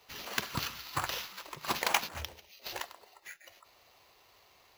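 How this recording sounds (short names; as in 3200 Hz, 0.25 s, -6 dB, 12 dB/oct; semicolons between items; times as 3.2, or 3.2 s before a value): aliases and images of a low sample rate 8800 Hz, jitter 0%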